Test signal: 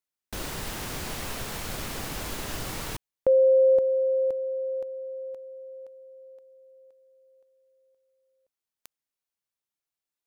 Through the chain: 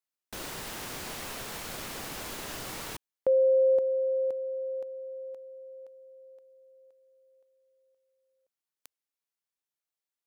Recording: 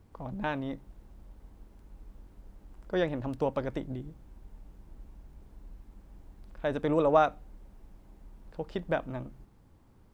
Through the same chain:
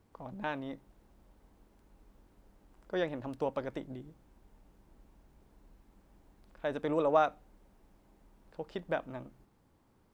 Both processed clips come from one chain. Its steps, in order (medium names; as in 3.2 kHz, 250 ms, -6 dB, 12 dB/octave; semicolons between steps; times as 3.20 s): bass shelf 140 Hz -11 dB; trim -3 dB